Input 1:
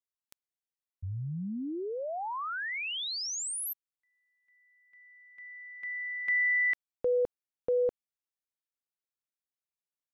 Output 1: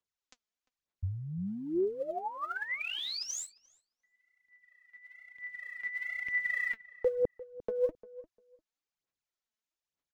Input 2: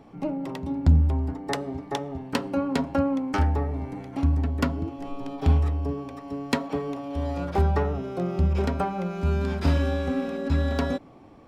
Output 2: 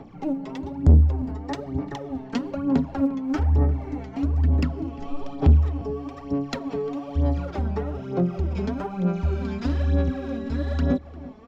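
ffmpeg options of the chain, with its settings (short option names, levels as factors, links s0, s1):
-filter_complex "[0:a]acrossover=split=350[s0][s1];[s1]acompressor=threshold=0.00708:ratio=2:attack=39:release=184:knee=2.83:detection=peak[s2];[s0][s2]amix=inputs=2:normalize=0,aresample=16000,asoftclip=type=tanh:threshold=0.119,aresample=44100,aphaser=in_gain=1:out_gain=1:delay=4.7:decay=0.66:speed=1.1:type=sinusoidal,asplit=2[s3][s4];[s4]adelay=349,lowpass=f=1700:p=1,volume=0.133,asplit=2[s5][s6];[s6]adelay=349,lowpass=f=1700:p=1,volume=0.17[s7];[s3][s5][s7]amix=inputs=3:normalize=0"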